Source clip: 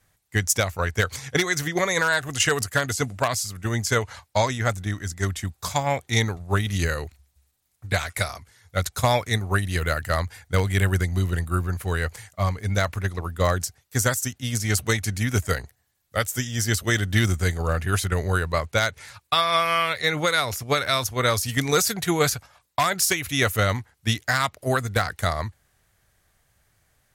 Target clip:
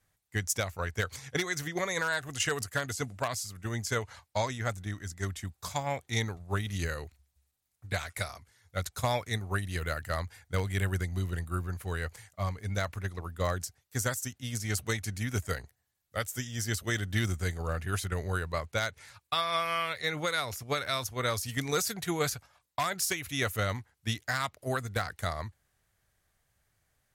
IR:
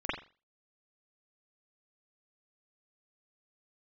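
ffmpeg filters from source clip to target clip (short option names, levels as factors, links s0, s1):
-af "volume=0.355"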